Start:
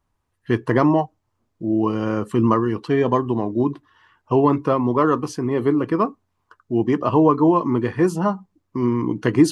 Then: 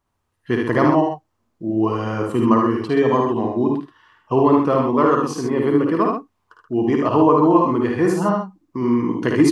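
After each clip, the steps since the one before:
low-shelf EQ 140 Hz −6 dB
on a send: multi-tap delay 54/75/128 ms −5/−4/−7.5 dB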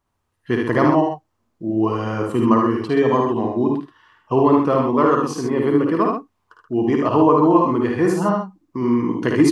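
no processing that can be heard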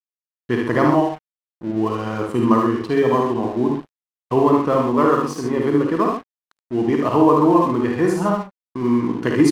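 double-tracking delay 41 ms −12.5 dB
dead-zone distortion −38 dBFS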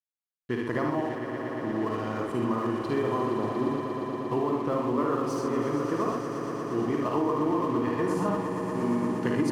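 downward compressor, threshold −16 dBFS, peak gain reduction 7.5 dB
echo that builds up and dies away 117 ms, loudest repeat 5, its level −10.5 dB
level −8 dB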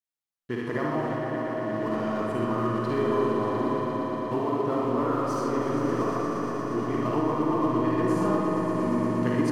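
convolution reverb RT60 4.2 s, pre-delay 5 ms, DRR −0.5 dB
level −1.5 dB

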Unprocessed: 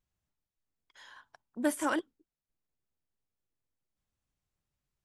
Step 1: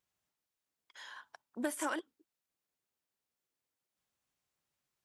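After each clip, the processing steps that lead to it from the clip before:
high-pass filter 450 Hz 6 dB per octave
downward compressor 6 to 1, threshold −36 dBFS, peak gain reduction 10 dB
level +4 dB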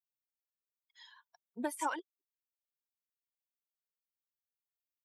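spectral dynamics exaggerated over time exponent 2
parametric band 920 Hz +12.5 dB 0.29 octaves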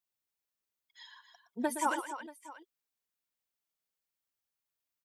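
multi-tap delay 118/271/634 ms −10.5/−11/−18.5 dB
level +4 dB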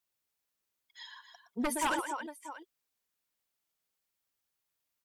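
sine wavefolder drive 9 dB, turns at −17.5 dBFS
level −8.5 dB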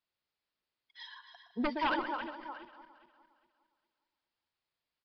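feedback delay that plays each chunk backwards 204 ms, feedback 53%, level −13 dB
downsampling to 11,025 Hz

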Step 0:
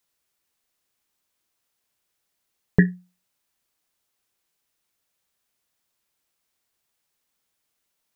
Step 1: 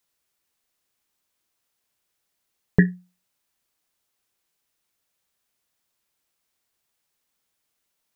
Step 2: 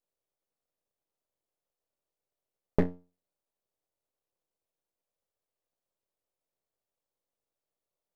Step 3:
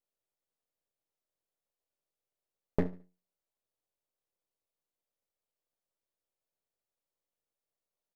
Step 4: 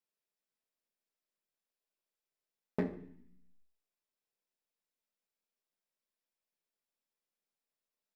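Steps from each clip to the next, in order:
no processing that can be heard
sub-octave generator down 1 octave, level −4 dB; drawn EQ curve 220 Hz 0 dB, 550 Hz +13 dB, 1,400 Hz −7 dB; half-wave rectification; level −8 dB
repeating echo 72 ms, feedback 29%, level −18 dB; level −4 dB
convolution reverb RT60 0.65 s, pre-delay 3 ms, DRR 6.5 dB; level −4 dB

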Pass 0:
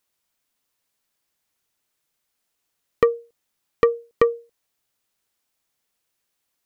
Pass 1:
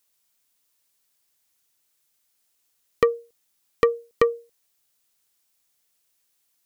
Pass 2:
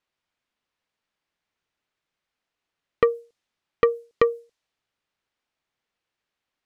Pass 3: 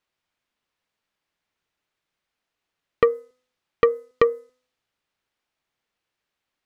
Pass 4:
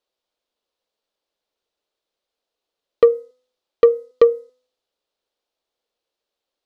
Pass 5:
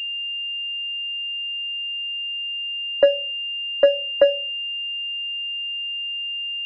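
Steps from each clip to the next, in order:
high-shelf EQ 3,500 Hz +9.5 dB; level −2 dB
low-pass that shuts in the quiet parts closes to 2,500 Hz, open at −19.5 dBFS
hum removal 252 Hz, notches 8; level +1.5 dB
octave-band graphic EQ 125/500/2,000/4,000 Hz −11/+11/−7/+7 dB; level −3.5 dB
frequency inversion band by band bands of 1,000 Hz; switching amplifier with a slow clock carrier 2,800 Hz; level −2.5 dB

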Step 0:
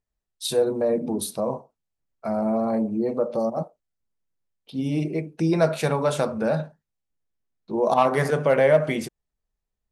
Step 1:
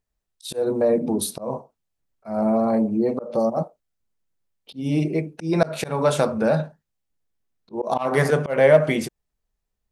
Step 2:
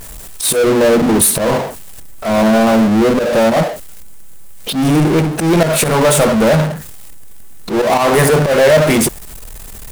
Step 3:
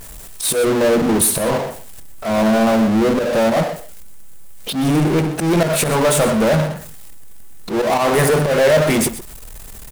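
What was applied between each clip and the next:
volume swells 180 ms; level +3.5 dB
high shelf with overshoot 6,800 Hz +7 dB, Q 1.5; power curve on the samples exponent 0.35
single-tap delay 125 ms −14 dB; level −4 dB

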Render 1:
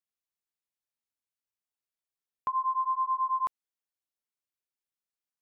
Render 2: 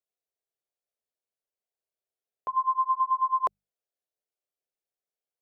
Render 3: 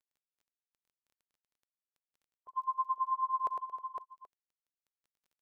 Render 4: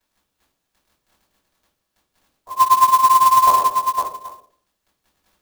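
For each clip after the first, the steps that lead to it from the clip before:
mains-hum notches 50/100/150/200 Hz; noise gate −28 dBFS, range −10 dB; flat-topped bell 530 Hz +12.5 dB 1.2 octaves; level +5 dB
spectral dynamics exaggerated over time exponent 3; multi-tap delay 64/106/226/314/509/780 ms −20/−5/−16/−16/−5.5/−18.5 dB; surface crackle 15 per second −51 dBFS; level −7.5 dB
convolution reverb RT60 0.50 s, pre-delay 3 ms, DRR −11.5 dB; converter with an unsteady clock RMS 0.027 ms; level +8 dB

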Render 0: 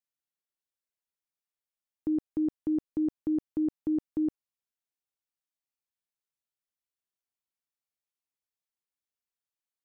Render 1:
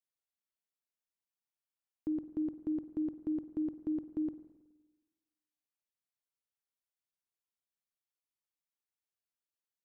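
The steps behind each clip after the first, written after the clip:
convolution reverb RT60 1.2 s, pre-delay 46 ms, DRR 12 dB
level −5.5 dB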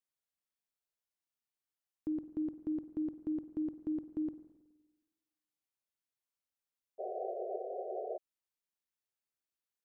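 sound drawn into the spectrogram noise, 0:06.98–0:08.18, 360–770 Hz −38 dBFS
level −1.5 dB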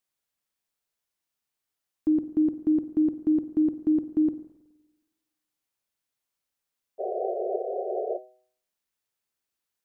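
hum removal 125.7 Hz, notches 6
dynamic equaliser 280 Hz, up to +6 dB, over −49 dBFS, Q 0.85
level +7.5 dB

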